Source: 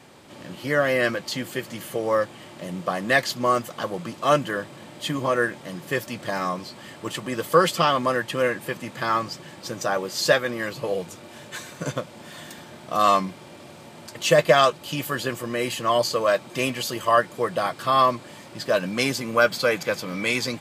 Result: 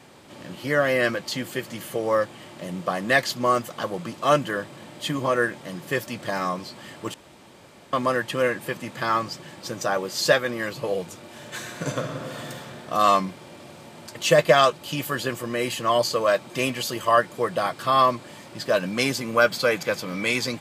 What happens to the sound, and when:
7.14–7.93 s: room tone
11.33–12.59 s: reverb throw, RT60 2.8 s, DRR 1 dB

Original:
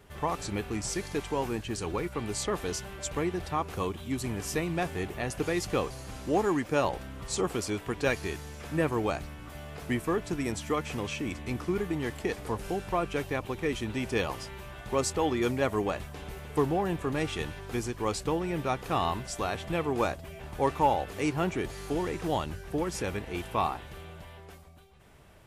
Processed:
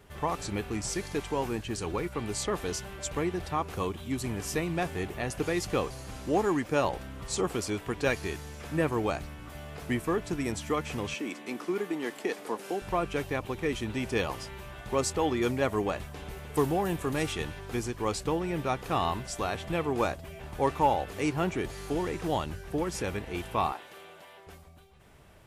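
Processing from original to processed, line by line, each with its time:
11.14–12.82 s: high-pass 230 Hz 24 dB/octave
16.54–17.33 s: treble shelf 6.3 kHz +11 dB
23.72–24.47 s: high-pass 360 Hz

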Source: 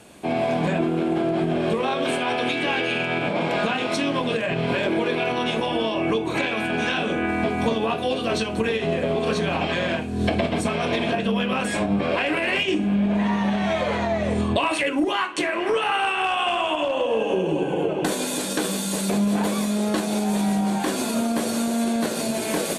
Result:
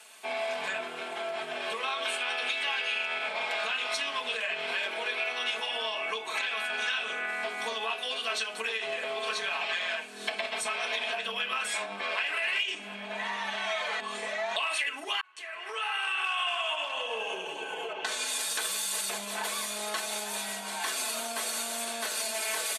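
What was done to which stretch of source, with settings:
14.00–14.56 s: reverse
15.21–16.38 s: fade in
17.92–18.37 s: low-pass 4.7 kHz -> 11 kHz
whole clip: high-pass 1.2 kHz 12 dB/octave; comb 4.6 ms, depth 72%; compression 2.5:1, threshold -28 dBFS; trim -1 dB

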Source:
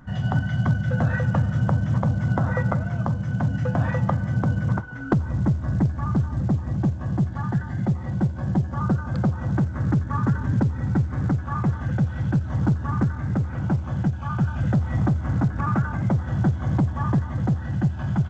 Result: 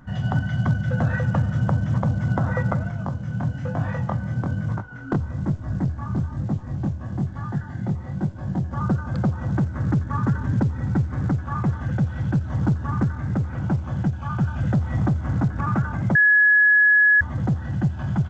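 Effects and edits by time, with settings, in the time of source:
2.91–8.71 s: chorus 1.1 Hz, delay 19 ms, depth 7.1 ms
16.15–17.21 s: bleep 1.69 kHz -12 dBFS

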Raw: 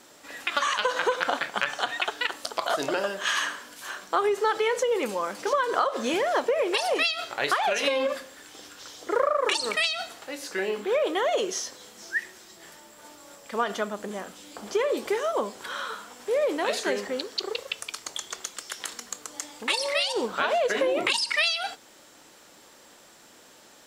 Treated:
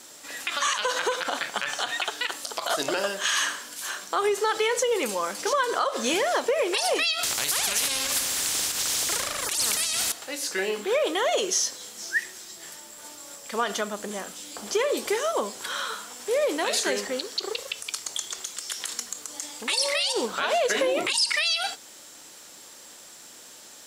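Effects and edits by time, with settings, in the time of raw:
7.23–10.12 s: spectrum-flattening compressor 4:1
whole clip: peaking EQ 9.3 kHz +10.5 dB 2.5 oct; peak limiter -14 dBFS

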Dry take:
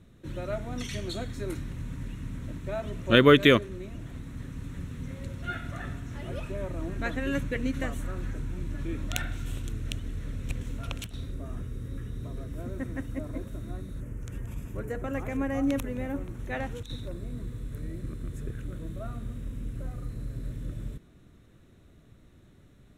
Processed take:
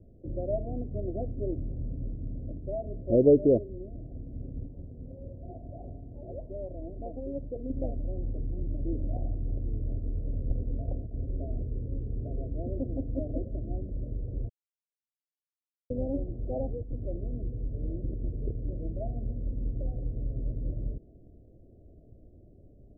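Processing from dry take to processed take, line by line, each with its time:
4.66–7.70 s: tilt shelf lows -7.5 dB
14.49–15.90 s: mute
whole clip: peaking EQ 170 Hz -8 dB 1.2 oct; gain riding within 5 dB 2 s; steep low-pass 700 Hz 72 dB/octave

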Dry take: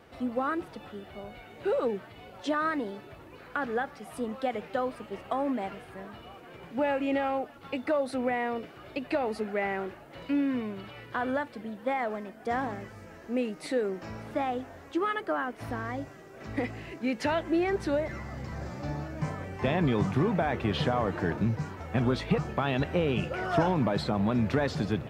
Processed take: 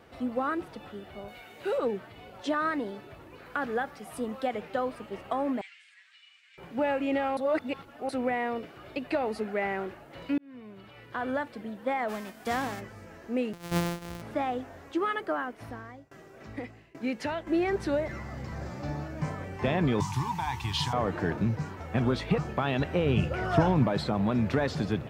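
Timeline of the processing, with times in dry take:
1.28–1.78 s: tilt EQ +2 dB/octave
3.46–4.47 s: treble shelf 7.9 kHz +5 dB
5.61–6.58 s: elliptic band-pass 2–8 kHz, stop band 70 dB
7.37–8.09 s: reverse
10.38–11.44 s: fade in
12.08–12.79 s: formants flattened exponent 0.6
13.53–14.22 s: sorted samples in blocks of 256 samples
15.28–17.47 s: tremolo saw down 1.2 Hz, depth 95%
20.00–20.93 s: FFT filter 130 Hz 0 dB, 200 Hz -13 dB, 320 Hz -12 dB, 610 Hz -29 dB, 920 Hz +12 dB, 1.3 kHz -9 dB, 5.8 kHz +12 dB
23.06–23.84 s: peaking EQ 77 Hz +9 dB 2.1 oct

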